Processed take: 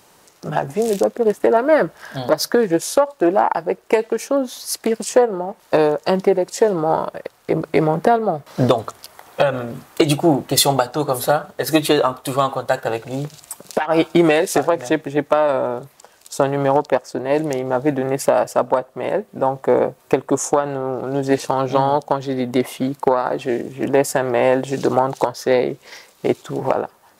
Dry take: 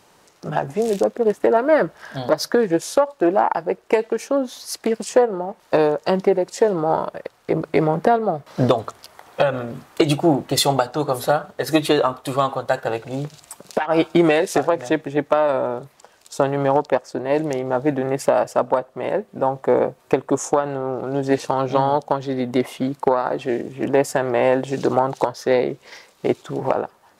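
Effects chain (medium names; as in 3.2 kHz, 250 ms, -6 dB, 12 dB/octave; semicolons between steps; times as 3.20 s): treble shelf 9.1 kHz +9.5 dB; trim +1.5 dB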